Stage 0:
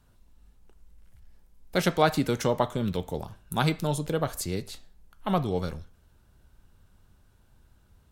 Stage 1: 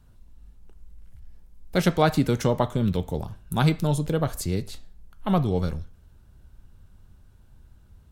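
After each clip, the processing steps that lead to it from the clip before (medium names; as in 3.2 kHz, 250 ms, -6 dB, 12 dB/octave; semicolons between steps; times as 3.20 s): bass shelf 240 Hz +8.5 dB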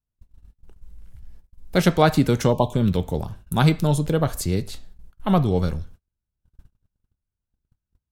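gate -44 dBFS, range -35 dB; spectral selection erased 2.52–2.73 s, 1.1–2.3 kHz; trim +3.5 dB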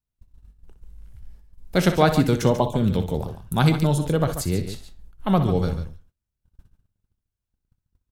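multi-tap echo 62/141 ms -12/-11 dB; trim -1 dB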